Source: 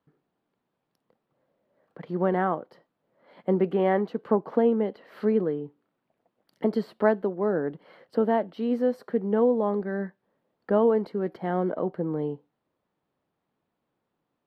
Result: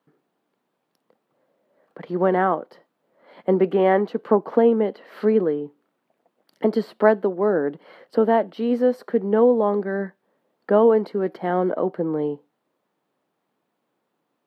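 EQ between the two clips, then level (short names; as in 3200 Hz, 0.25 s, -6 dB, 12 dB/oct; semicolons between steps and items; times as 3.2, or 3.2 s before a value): HPF 210 Hz 12 dB/oct; +6.0 dB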